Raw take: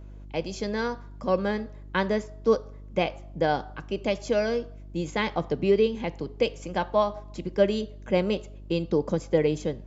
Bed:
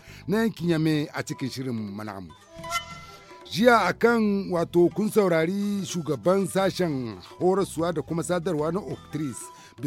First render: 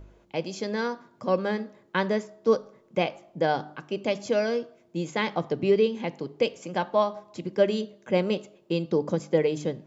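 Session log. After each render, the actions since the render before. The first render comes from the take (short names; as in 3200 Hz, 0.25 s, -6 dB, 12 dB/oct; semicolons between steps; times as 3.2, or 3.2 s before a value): de-hum 50 Hz, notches 6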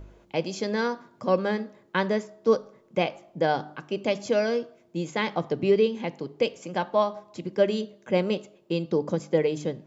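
vocal rider within 3 dB 2 s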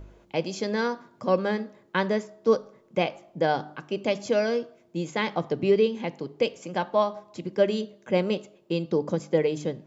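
nothing audible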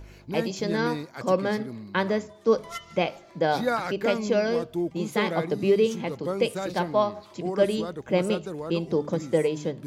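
add bed -8.5 dB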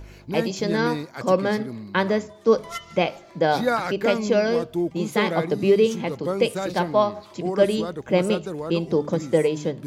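gain +3.5 dB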